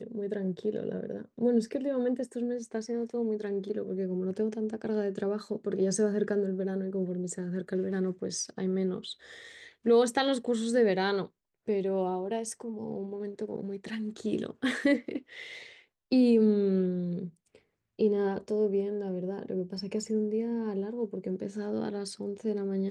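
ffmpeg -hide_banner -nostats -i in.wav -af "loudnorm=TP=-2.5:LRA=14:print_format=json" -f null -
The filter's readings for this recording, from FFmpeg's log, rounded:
"input_i" : "-31.1",
"input_tp" : "-13.4",
"input_lra" : "4.9",
"input_thresh" : "-41.4",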